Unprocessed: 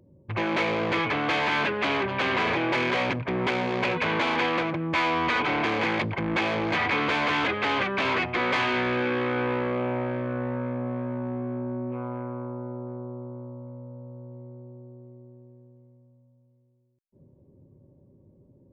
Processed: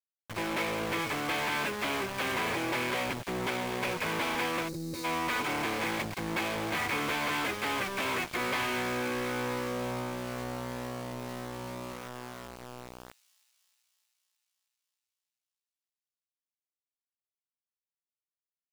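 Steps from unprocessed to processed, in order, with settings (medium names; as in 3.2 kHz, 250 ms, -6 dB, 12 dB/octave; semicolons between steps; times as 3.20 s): small samples zeroed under -28.5 dBFS; feedback echo behind a high-pass 312 ms, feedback 66%, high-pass 4.4 kHz, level -12 dB; time-frequency box 4.68–5.05 s, 580–3700 Hz -18 dB; trim -6 dB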